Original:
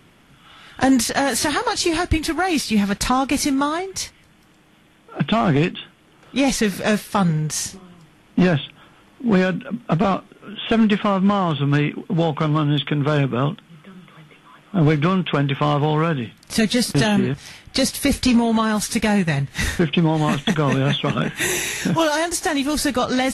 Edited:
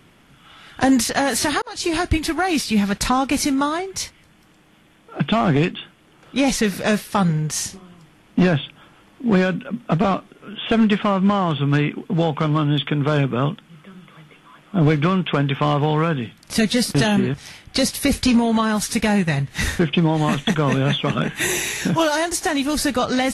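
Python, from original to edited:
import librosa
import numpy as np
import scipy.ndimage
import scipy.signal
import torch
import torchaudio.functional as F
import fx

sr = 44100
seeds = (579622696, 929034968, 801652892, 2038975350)

y = fx.edit(x, sr, fx.fade_in_span(start_s=1.62, length_s=0.33), tone=tone)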